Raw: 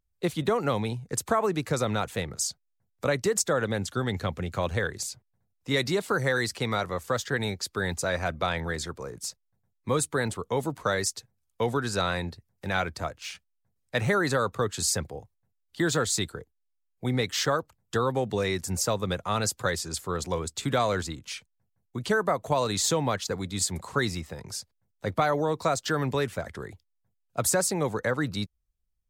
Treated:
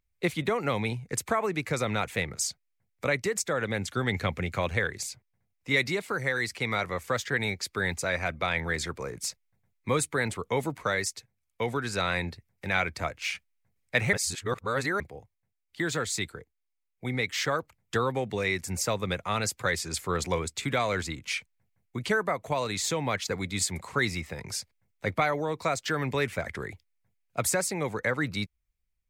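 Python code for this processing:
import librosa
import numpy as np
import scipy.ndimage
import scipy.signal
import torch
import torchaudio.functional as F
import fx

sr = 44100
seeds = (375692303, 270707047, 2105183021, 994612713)

y = fx.edit(x, sr, fx.reverse_span(start_s=14.13, length_s=0.87), tone=tone)
y = fx.peak_eq(y, sr, hz=2200.0, db=11.0, octaves=0.54)
y = fx.rider(y, sr, range_db=4, speed_s=0.5)
y = y * 10.0 ** (-2.5 / 20.0)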